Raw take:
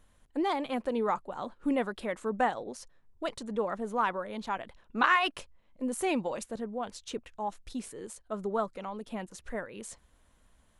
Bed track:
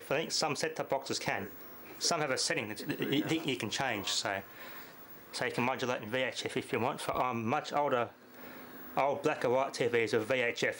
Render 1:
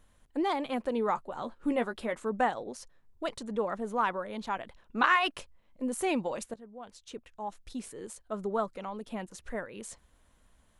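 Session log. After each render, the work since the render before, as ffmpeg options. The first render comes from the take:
-filter_complex "[0:a]asettb=1/sr,asplit=3[a][b][c];[a]atrim=end=1.134[d];[b]atrim=start=1.13:end=2.19,asetpts=PTS-STARTPTS,afade=t=in:d=0.004:c=qsin,afade=t=out:st=1.056:d=0.004:c=qsin,asplit=2[e][f];[f]adelay=13,volume=-9dB[g];[e][g]amix=inputs=2:normalize=0,atrim=end_sample=46746[h];[c]atrim=start=2.186[i];[d][h]acrossfade=d=0.004:c1=hsin:c2=qsin[j];[j][i]acrossfade=d=0.004:c1=qsin:c2=hsin,asplit=2[k][l];[k]atrim=end=6.54,asetpts=PTS-STARTPTS,afade=t=out:st=6.536:d=0.004:c=hsin:silence=0.16788[m];[l]atrim=start=6.54,asetpts=PTS-STARTPTS,afade=t=in:d=1.5:silence=0.16788[n];[m][n]concat=n=2:v=0:a=1"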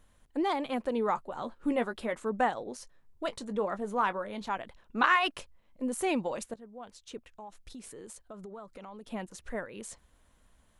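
-filter_complex "[0:a]asettb=1/sr,asplit=3[a][b][c];[a]atrim=end=2.694[d];[b]atrim=start=2.69:end=4.51,asetpts=PTS-STARTPTS,afade=t=in:d=0.004:c=qsin,afade=t=out:st=1.816:d=0.004:c=qsin,asplit=2[e][f];[f]adelay=20,volume=-13dB[g];[e][g]amix=inputs=2:normalize=0,atrim=end_sample=80262[h];[c]atrim=start=4.506[i];[d][h]acrossfade=d=0.004:c1=hsin:c2=qsin[j];[j][i]acrossfade=d=0.004:c1=qsin:c2=hsin,asettb=1/sr,asplit=3[k][l][m];[k]atrim=end=7.294[n];[l]atrim=start=7.29:end=9.07,asetpts=PTS-STARTPTS,afade=t=in:d=0.004:c=qsin,afade=t=out:st=1.776:d=0.004:c=qsin,acompressor=threshold=-42dB:ratio=6:attack=3.2:release=140:knee=1:detection=peak[o];[m]atrim=start=9.066[p];[n][o]acrossfade=d=0.004:c1=hsin:c2=qsin[q];[q][p]acrossfade=d=0.004:c1=qsin:c2=hsin"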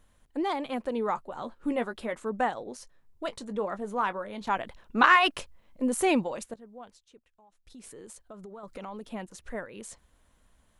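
-filter_complex "[0:a]asettb=1/sr,asplit=3[a][b][c];[a]atrim=end=4.474[d];[b]atrim=start=4.47:end=6.24,asetpts=PTS-STARTPTS,afade=t=in:d=0.004:c=qsin,afade=t=out:st=1.766:d=0.004:c=qsin,acontrast=36[e];[c]atrim=start=6.236[f];[d][e]acrossfade=d=0.004:c1=hsin:c2=qsin[g];[g][f]acrossfade=d=0.004:c1=qsin:c2=hsin,asettb=1/sr,asplit=3[h][i][j];[h]atrim=end=8.634[k];[i]atrim=start=8.63:end=9.07,asetpts=PTS-STARTPTS,afade=t=in:d=0.004:c=qsin,afade=t=out:st=0.436:d=0.004:c=qsin,acontrast=55[l];[j]atrim=start=9.066[m];[k][l]acrossfade=d=0.004:c1=hsin:c2=qsin[n];[n][m]acrossfade=d=0.004:c1=qsin:c2=hsin,asplit=3[o][p][q];[o]atrim=end=7.07,asetpts=PTS-STARTPTS,afade=t=out:st=6.81:d=0.26:silence=0.199526[r];[p]atrim=start=7.07:end=7.6,asetpts=PTS-STARTPTS,volume=-14dB[s];[q]atrim=start=7.6,asetpts=PTS-STARTPTS,afade=t=in:d=0.26:silence=0.199526[t];[r][s][t]concat=n=3:v=0:a=1"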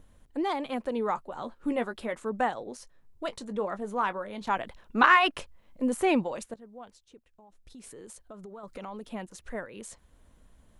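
-filter_complex "[0:a]acrossover=split=590|3200[a][b][c];[a]acompressor=mode=upward:threshold=-48dB:ratio=2.5[d];[c]alimiter=level_in=6dB:limit=-24dB:level=0:latency=1:release=400,volume=-6dB[e];[d][b][e]amix=inputs=3:normalize=0"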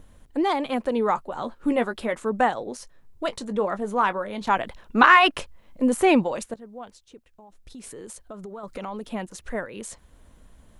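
-af "volume=6.5dB,alimiter=limit=-3dB:level=0:latency=1"

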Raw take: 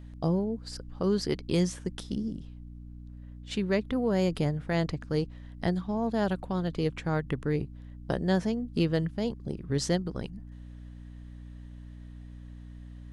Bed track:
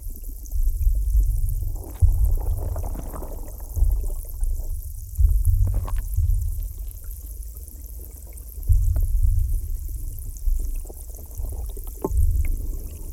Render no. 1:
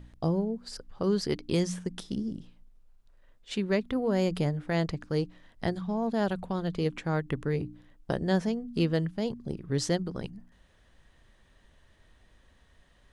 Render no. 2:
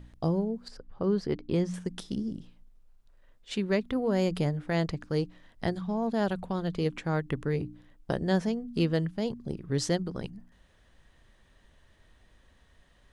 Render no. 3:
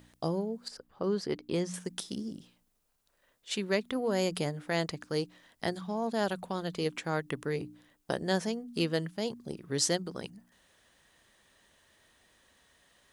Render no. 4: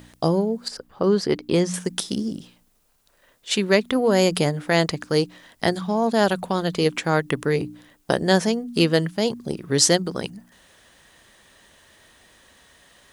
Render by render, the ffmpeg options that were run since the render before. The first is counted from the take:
-af "bandreject=f=60:t=h:w=4,bandreject=f=120:t=h:w=4,bandreject=f=180:t=h:w=4,bandreject=f=240:t=h:w=4,bandreject=f=300:t=h:w=4"
-filter_complex "[0:a]asettb=1/sr,asplit=3[a][b][c];[a]atrim=end=0.684[d];[b]atrim=start=0.68:end=1.74,asetpts=PTS-STARTPTS,afade=t=in:d=0.004:c=qsin,afade=t=out:st=1.056:d=0.004:c=qsin,lowpass=f=1.4k:p=1[e];[c]atrim=start=1.736[f];[d][e]acrossfade=d=0.004:c1=hsin:c2=qsin[g];[g][f]acrossfade=d=0.004:c1=qsin:c2=hsin"
-af "highpass=f=330:p=1,highshelf=f=5.9k:g=12"
-af "volume=11.5dB"

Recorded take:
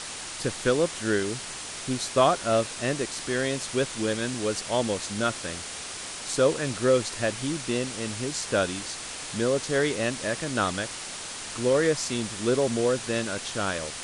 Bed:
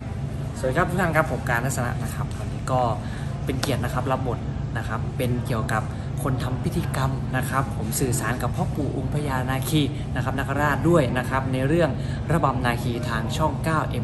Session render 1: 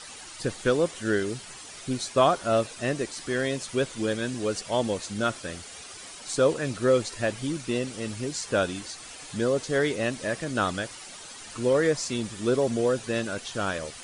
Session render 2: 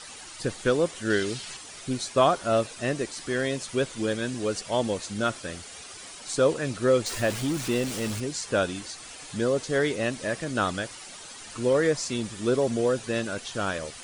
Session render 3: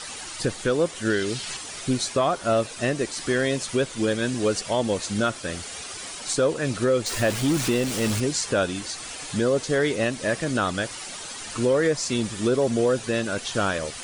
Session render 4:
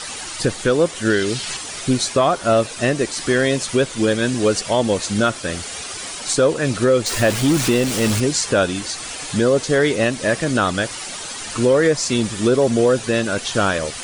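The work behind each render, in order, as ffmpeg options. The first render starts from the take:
-af "afftdn=nr=10:nf=-37"
-filter_complex "[0:a]asettb=1/sr,asplit=3[a][b][c];[a]atrim=end=1.104[d];[b]atrim=start=1.1:end=1.57,asetpts=PTS-STARTPTS,afade=t=in:d=0.004:c=qsin,afade=t=out:st=0.466:d=0.004:c=qsin,equalizer=f=3.8k:w=0.71:g=7.5[e];[c]atrim=start=1.566[f];[d][e]acrossfade=d=0.004:c1=hsin:c2=qsin[g];[g][f]acrossfade=d=0.004:c1=qsin:c2=hsin,asettb=1/sr,asplit=3[h][i][j];[h]atrim=end=7.064[k];[i]atrim=start=7.06:end=8.2,asetpts=PTS-STARTPTS,afade=t=in:d=0.004:c=qsin,afade=t=out:st=1.136:d=0.004:c=qsin,aeval=exprs='val(0)+0.5*0.0266*sgn(val(0))':c=same[l];[j]atrim=start=8.196[m];[k][l]acrossfade=d=0.004:c1=hsin:c2=qsin[n];[n][m]acrossfade=d=0.004:c1=qsin:c2=hsin"
-af "acontrast=73,alimiter=limit=-13dB:level=0:latency=1:release=379"
-af "volume=6dB"

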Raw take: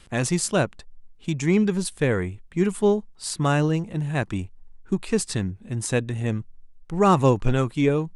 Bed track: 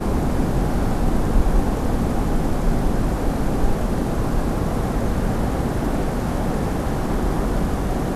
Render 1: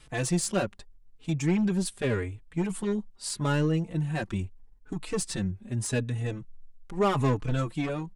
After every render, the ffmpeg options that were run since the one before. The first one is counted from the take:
-filter_complex "[0:a]asoftclip=type=tanh:threshold=-17.5dB,asplit=2[a][b];[b]adelay=4.2,afreqshift=0.81[c];[a][c]amix=inputs=2:normalize=1"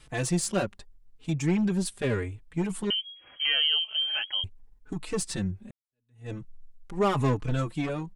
-filter_complex "[0:a]asettb=1/sr,asplit=3[a][b][c];[a]atrim=end=2.904[d];[b]atrim=start=2.9:end=4.44,asetpts=PTS-STARTPTS,afade=t=in:d=0.004:c=qsin,afade=t=out:st=1.536:d=0.004:c=qsin,lowpass=f=2.8k:t=q:w=0.5098,lowpass=f=2.8k:t=q:w=0.6013,lowpass=f=2.8k:t=q:w=0.9,lowpass=f=2.8k:t=q:w=2.563,afreqshift=-3300[e];[c]atrim=start=4.436[f];[d][e]acrossfade=d=0.004:c1=hsin:c2=qsin[g];[g][f]acrossfade=d=0.004:c1=qsin:c2=hsin,asplit=2[h][i];[h]atrim=end=5.71,asetpts=PTS-STARTPTS,afade=t=out:st=5.706:d=0.004:c=hsin[j];[i]atrim=start=5.71,asetpts=PTS-STARTPTS,afade=t=in:d=0.61:c=exp[k];[j][k]concat=n=2:v=0:a=1"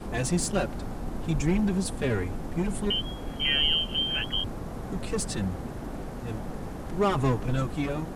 -filter_complex "[1:a]volume=-14.5dB[a];[0:a][a]amix=inputs=2:normalize=0"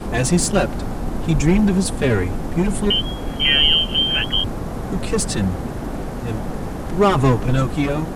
-af "volume=9.5dB"

